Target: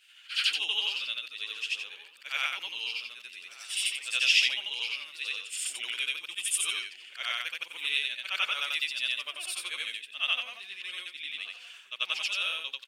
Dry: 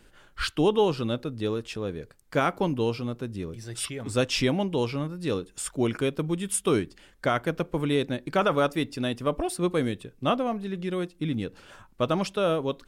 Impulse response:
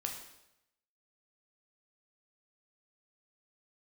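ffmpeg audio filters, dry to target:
-filter_complex "[0:a]afftfilt=real='re':imag='-im':win_size=8192:overlap=0.75,highpass=f=2.7k:t=q:w=3.6,asplit=2[a][b];[b]adelay=1166,volume=-15dB,highshelf=f=4k:g=-26.2[c];[a][c]amix=inputs=2:normalize=0,volume=4.5dB"

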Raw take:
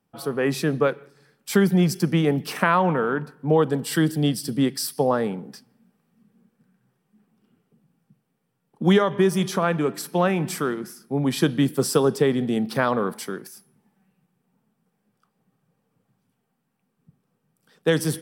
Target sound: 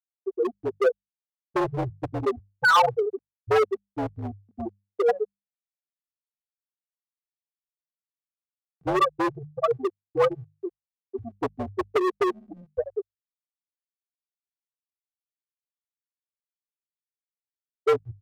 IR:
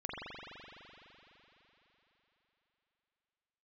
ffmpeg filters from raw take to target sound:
-af "afreqshift=-41,afftfilt=real='re*gte(hypot(re,im),0.631)':imag='im*gte(hypot(re,im),0.631)':win_size=1024:overlap=0.75,tiltshelf=f=770:g=-5.5,aeval=exprs='0.299*(cos(1*acos(clip(val(0)/0.299,-1,1)))-cos(1*PI/2))+0.00531*(cos(5*acos(clip(val(0)/0.299,-1,1)))-cos(5*PI/2))+0.015*(cos(7*acos(clip(val(0)/0.299,-1,1)))-cos(7*PI/2))':c=same,aecho=1:1:2.6:0.8,asoftclip=type=hard:threshold=-23dB,lowshelf=f=390:t=q:w=1.5:g=-9.5,bandreject=f=50:t=h:w=6,bandreject=f=100:t=h:w=6,bandreject=f=150:t=h:w=6,bandreject=f=200:t=h:w=6,volume=7.5dB"

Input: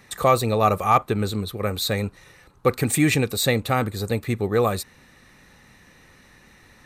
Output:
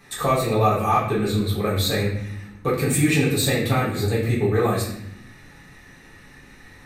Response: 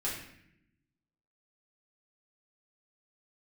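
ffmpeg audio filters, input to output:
-filter_complex "[0:a]acompressor=threshold=-23dB:ratio=2[a];[1:a]atrim=start_sample=2205[b];[a][b]afir=irnorm=-1:irlink=0"

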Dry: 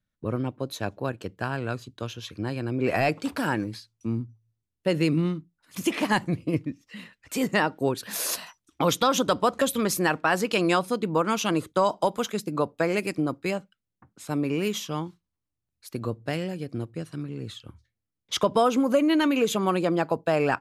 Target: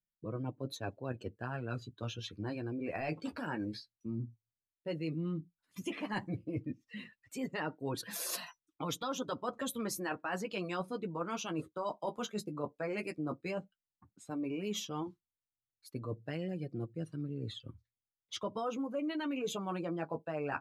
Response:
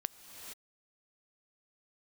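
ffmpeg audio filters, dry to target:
-af "flanger=delay=5.5:depth=8.8:regen=-29:speed=0.12:shape=triangular,areverse,acompressor=threshold=-35dB:ratio=5,areverse,afftdn=nr=14:nf=-50"

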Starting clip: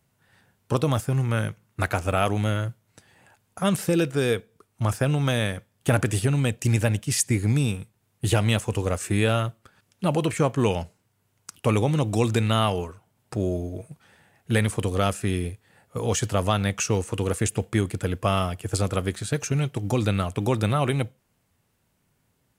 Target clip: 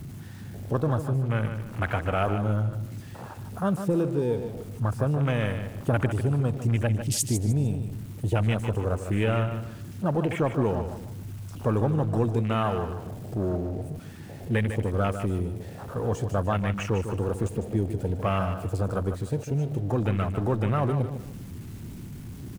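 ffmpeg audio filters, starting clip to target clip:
-af "aeval=exprs='val(0)+0.5*0.0531*sgn(val(0))':c=same,afwtdn=0.0398,aecho=1:1:151|302|453:0.355|0.106|0.0319,volume=-4.5dB"

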